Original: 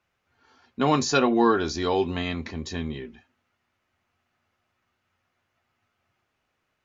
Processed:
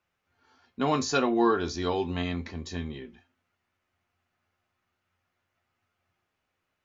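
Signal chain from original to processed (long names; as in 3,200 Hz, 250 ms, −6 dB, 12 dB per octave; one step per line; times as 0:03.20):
tuned comb filter 88 Hz, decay 0.21 s, harmonics all, mix 60%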